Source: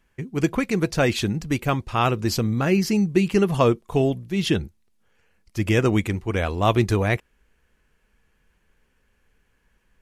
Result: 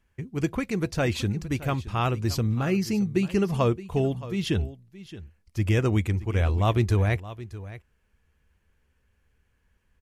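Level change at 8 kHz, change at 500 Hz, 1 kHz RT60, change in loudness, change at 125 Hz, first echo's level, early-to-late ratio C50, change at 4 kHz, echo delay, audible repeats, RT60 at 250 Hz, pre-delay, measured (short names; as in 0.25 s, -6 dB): -6.0 dB, -5.5 dB, none, -4.0 dB, -0.5 dB, -16.0 dB, none, -6.0 dB, 0.621 s, 1, none, none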